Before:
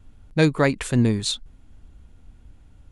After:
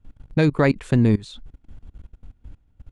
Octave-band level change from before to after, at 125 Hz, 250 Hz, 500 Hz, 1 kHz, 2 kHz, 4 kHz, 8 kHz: +2.5 dB, +2.0 dB, +0.5 dB, -0.5 dB, -1.5 dB, -10.0 dB, under -10 dB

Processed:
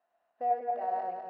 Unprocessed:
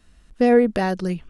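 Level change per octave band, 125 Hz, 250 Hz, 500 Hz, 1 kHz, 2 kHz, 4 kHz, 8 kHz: under -35 dB, -35.0 dB, -17.0 dB, -2.0 dB, -23.0 dB, under -30 dB, no reading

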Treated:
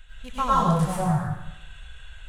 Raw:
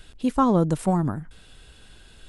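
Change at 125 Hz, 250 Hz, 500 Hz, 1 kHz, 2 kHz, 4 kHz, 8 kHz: +1.0 dB, -5.0 dB, -4.5 dB, +3.5 dB, +6.0 dB, +5.0 dB, +2.0 dB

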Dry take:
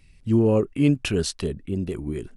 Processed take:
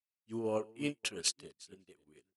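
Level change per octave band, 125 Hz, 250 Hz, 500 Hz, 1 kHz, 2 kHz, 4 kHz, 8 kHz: -26.5 dB, -19.5 dB, -15.0 dB, -9.0 dB, -9.0 dB, -5.0 dB, -2.5 dB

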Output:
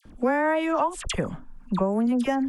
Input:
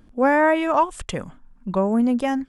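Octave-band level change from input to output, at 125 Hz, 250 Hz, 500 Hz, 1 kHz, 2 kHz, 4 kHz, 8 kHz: 0.0 dB, -3.0 dB, -4.5 dB, -5.5 dB, -5.5 dB, +1.0 dB, +2.0 dB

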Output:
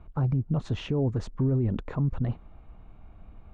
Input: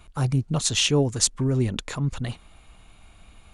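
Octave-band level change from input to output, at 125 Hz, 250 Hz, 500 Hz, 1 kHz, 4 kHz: -1.5 dB, -2.5 dB, -5.5 dB, -6.0 dB, -20.5 dB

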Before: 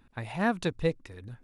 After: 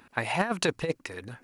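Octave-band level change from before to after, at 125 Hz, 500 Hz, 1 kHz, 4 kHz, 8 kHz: -1.5 dB, +1.0 dB, +3.0 dB, +7.5 dB, +12.0 dB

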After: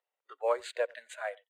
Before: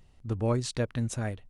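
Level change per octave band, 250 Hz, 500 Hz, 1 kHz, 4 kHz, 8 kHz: under -25 dB, +1.0 dB, +3.0 dB, -6.5 dB, -11.5 dB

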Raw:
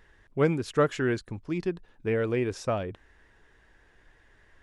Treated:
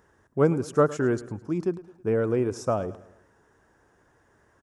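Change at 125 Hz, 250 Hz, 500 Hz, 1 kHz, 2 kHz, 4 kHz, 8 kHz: +2.0 dB, +3.0 dB, +3.0 dB, +2.5 dB, -3.5 dB, -5.5 dB, +3.0 dB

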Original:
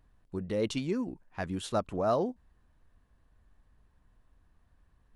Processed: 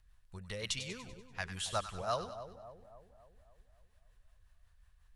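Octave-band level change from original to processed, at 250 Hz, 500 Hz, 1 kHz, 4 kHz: -17.0 dB, -10.5 dB, -4.0 dB, +3.5 dB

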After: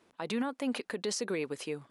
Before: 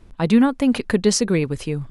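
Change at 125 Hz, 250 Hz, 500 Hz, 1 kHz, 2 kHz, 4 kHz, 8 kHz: -23.5 dB, -18.0 dB, -13.0 dB, -12.0 dB, -11.0 dB, -11.5 dB, -14.0 dB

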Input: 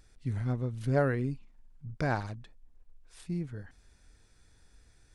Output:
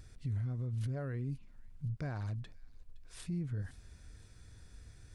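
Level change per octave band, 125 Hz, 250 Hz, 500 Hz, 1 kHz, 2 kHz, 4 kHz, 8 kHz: -3.0 dB, -7.5 dB, -14.5 dB, -15.5 dB, -13.5 dB, -4.0 dB, 0.0 dB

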